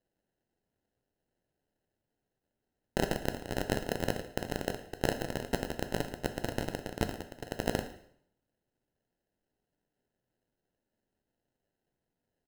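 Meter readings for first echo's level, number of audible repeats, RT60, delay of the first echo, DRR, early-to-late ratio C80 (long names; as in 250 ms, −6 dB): −19.5 dB, 1, 0.65 s, 112 ms, 7.0 dB, 13.5 dB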